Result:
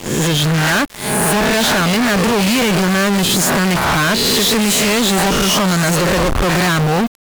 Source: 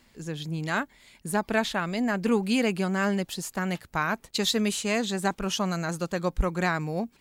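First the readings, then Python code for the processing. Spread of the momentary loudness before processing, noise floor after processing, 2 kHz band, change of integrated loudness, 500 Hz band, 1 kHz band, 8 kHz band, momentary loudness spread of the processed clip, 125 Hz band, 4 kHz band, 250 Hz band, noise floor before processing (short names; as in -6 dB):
7 LU, -23 dBFS, +14.0 dB, +14.0 dB, +12.0 dB, +13.5 dB, +18.5 dB, 3 LU, +15.0 dB, +17.0 dB, +12.0 dB, -62 dBFS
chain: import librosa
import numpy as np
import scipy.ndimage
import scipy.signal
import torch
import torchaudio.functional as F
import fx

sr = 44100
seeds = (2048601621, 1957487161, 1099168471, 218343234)

y = fx.spec_swells(x, sr, rise_s=0.67)
y = fx.fuzz(y, sr, gain_db=44.0, gate_db=-49.0)
y = fx.quant_dither(y, sr, seeds[0], bits=6, dither='none')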